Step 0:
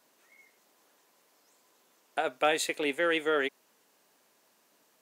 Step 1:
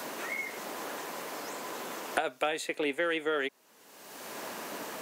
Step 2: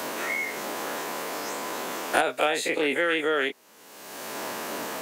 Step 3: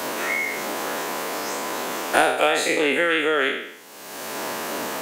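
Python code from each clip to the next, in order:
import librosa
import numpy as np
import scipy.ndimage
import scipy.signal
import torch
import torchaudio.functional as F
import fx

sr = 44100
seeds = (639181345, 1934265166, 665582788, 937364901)

y1 = fx.band_squash(x, sr, depth_pct=100)
y2 = fx.spec_dilate(y1, sr, span_ms=60)
y2 = F.gain(torch.from_numpy(y2), 3.0).numpy()
y3 = fx.spec_trails(y2, sr, decay_s=0.74)
y3 = F.gain(torch.from_numpy(y3), 3.0).numpy()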